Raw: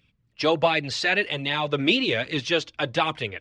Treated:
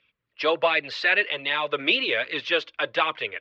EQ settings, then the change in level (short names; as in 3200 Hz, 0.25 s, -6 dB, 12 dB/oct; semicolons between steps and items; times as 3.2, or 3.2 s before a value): air absorption 71 m; three-band isolator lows -22 dB, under 440 Hz, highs -20 dB, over 4100 Hz; bell 780 Hz -8.5 dB 0.41 oct; +4.0 dB